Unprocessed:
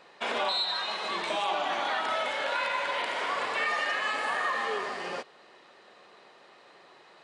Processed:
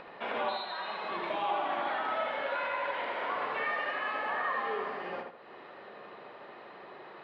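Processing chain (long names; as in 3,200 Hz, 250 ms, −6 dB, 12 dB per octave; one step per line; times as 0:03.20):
upward compression, threshold −35 dBFS
high-frequency loss of the air 410 metres
feedback echo with a low-pass in the loop 77 ms, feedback 36%, low-pass 2,800 Hz, level −4 dB
level −2 dB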